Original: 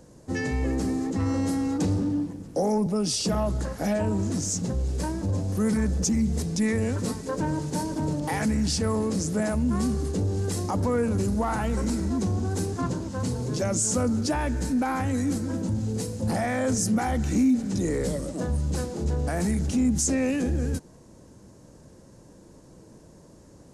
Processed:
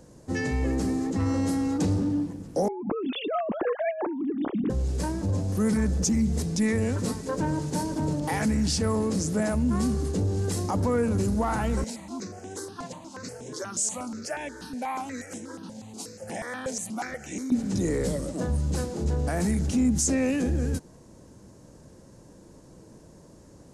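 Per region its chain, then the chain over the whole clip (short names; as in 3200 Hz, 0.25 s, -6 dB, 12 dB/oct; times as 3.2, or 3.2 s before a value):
2.68–4.7 sine-wave speech + low shelf 440 Hz +5.5 dB + negative-ratio compressor -29 dBFS
11.84–17.52 weighting filter A + step phaser 8.3 Hz 330–4500 Hz
whole clip: dry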